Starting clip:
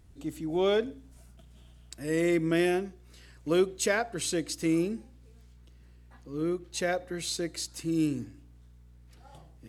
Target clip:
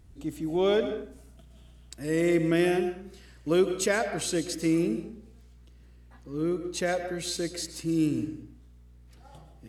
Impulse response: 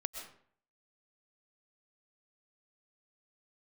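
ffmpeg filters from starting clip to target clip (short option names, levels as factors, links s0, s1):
-filter_complex "[0:a]asplit=2[s0][s1];[1:a]atrim=start_sample=2205,lowshelf=f=460:g=4[s2];[s1][s2]afir=irnorm=-1:irlink=0,volume=1.5[s3];[s0][s3]amix=inputs=2:normalize=0,volume=0.447"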